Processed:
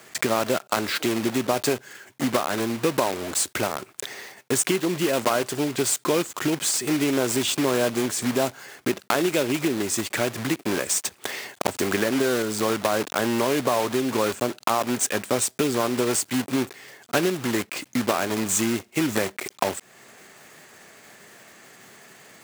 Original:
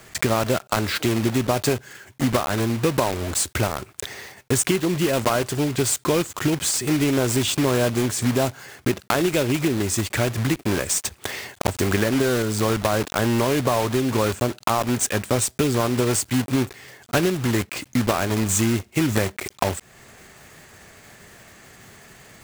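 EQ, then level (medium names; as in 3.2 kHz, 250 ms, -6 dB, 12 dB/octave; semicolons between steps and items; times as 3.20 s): high-pass 210 Hz 12 dB/octave; -1.0 dB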